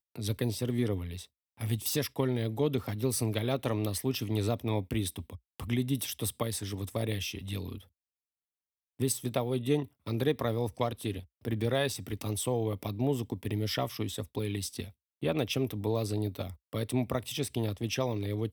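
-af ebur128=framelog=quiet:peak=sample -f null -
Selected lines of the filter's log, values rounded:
Integrated loudness:
  I:         -32.6 LUFS
  Threshold: -42.9 LUFS
Loudness range:
  LRA:         3.7 LU
  Threshold: -53.1 LUFS
  LRA low:   -35.2 LUFS
  LRA high:  -31.5 LUFS
Sample peak:
  Peak:      -14.8 dBFS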